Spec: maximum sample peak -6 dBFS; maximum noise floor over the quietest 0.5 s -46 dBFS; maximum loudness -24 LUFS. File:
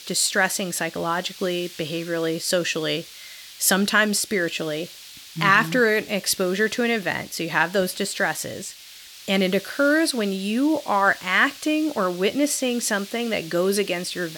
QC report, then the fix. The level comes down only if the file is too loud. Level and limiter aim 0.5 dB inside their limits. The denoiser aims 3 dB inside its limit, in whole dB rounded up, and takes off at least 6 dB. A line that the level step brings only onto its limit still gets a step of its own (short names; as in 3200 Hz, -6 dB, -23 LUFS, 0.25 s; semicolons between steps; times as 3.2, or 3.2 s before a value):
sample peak -4.5 dBFS: fail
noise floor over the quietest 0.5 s -44 dBFS: fail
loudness -22.5 LUFS: fail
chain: denoiser 6 dB, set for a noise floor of -44 dBFS; gain -2 dB